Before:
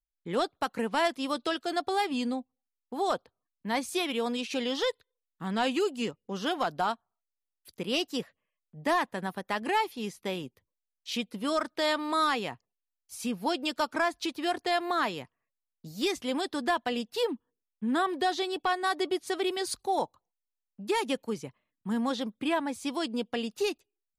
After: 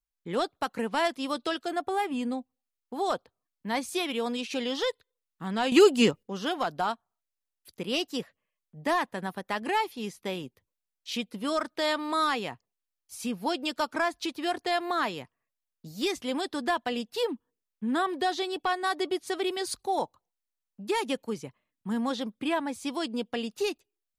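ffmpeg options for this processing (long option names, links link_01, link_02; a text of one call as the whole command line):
ffmpeg -i in.wav -filter_complex "[0:a]asettb=1/sr,asplit=3[link_01][link_02][link_03];[link_01]atrim=end=1.684[link_04];[link_02]atrim=start=1.68:end=2.32,asetpts=PTS-STARTPTS,afade=type=in:duration=0.004:curve=qsin,afade=type=out:start_time=0.636:duration=0.004:curve=qsin,equalizer=frequency=4500:width=1.6:gain=-12.5[link_05];[link_03]atrim=start=2.316[link_06];[link_04][link_05]acrossfade=duration=0.004:curve1=hsin:curve2=qsin[link_07];[link_07][link_06]acrossfade=duration=0.004:curve1=qsin:curve2=hsin,asplit=3[link_08][link_09][link_10];[link_08]atrim=end=5.722[link_11];[link_09]atrim=start=5.718:end=6.232,asetpts=PTS-STARTPTS,volume=10.5dB[link_12];[link_10]atrim=start=6.228[link_13];[link_11][link_12]acrossfade=duration=0.004:curve1=hsin:curve2=hsin[link_14];[link_14][link_13]acrossfade=duration=0.004:curve1=hsin:curve2=hsin" out.wav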